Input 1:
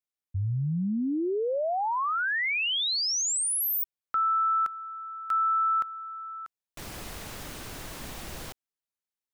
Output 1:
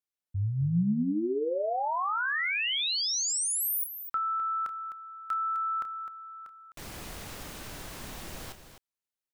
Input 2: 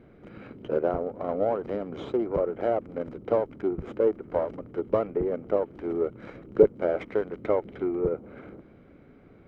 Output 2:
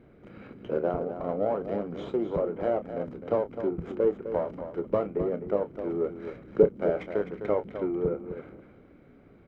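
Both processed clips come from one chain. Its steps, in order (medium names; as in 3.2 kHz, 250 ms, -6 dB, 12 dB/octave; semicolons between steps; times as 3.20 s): dynamic bell 180 Hz, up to +5 dB, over -46 dBFS, Q 2.3; on a send: loudspeakers at several distances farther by 10 m -11 dB, 88 m -10 dB; on the sum: trim -2.5 dB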